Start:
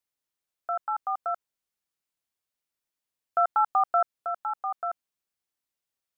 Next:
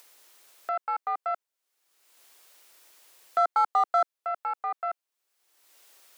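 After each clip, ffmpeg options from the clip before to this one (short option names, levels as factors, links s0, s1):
-af "aeval=exprs='0.188*(cos(1*acos(clip(val(0)/0.188,-1,1)))-cos(1*PI/2))+0.00841*(cos(4*acos(clip(val(0)/0.188,-1,1)))-cos(4*PI/2))+0.00266*(cos(8*acos(clip(val(0)/0.188,-1,1)))-cos(8*PI/2))':c=same,acompressor=mode=upward:threshold=0.0224:ratio=2.5,highpass=f=340:w=0.5412,highpass=f=340:w=1.3066"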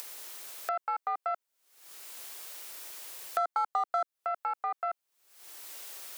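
-af "acompressor=threshold=0.0355:ratio=2.5,highshelf=f=8400:g=3.5,acompressor=mode=upward:threshold=0.0224:ratio=2.5"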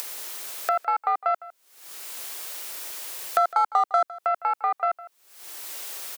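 -filter_complex "[0:a]asplit=2[s0][s1];[s1]adelay=157.4,volume=0.126,highshelf=f=4000:g=-3.54[s2];[s0][s2]amix=inputs=2:normalize=0,volume=2.66"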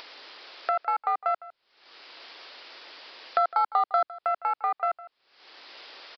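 -af "aresample=11025,aresample=44100,volume=0.75"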